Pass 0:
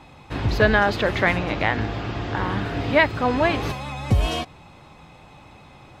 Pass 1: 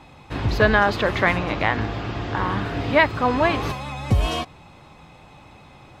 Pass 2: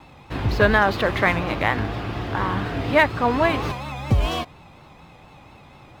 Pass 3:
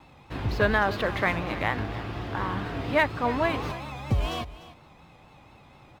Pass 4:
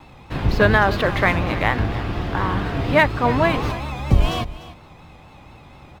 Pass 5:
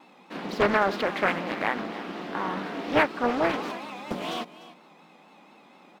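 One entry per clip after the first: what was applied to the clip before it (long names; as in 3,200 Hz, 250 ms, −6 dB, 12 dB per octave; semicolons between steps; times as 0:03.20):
dynamic equaliser 1,100 Hz, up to +5 dB, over −38 dBFS, Q 3.4
running median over 5 samples; pitch vibrato 4.2 Hz 65 cents
single-tap delay 296 ms −16.5 dB; level −6 dB
sub-octave generator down 1 octave, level 0 dB; level +7 dB
linear-phase brick-wall high-pass 170 Hz; highs frequency-modulated by the lows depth 0.79 ms; level −6.5 dB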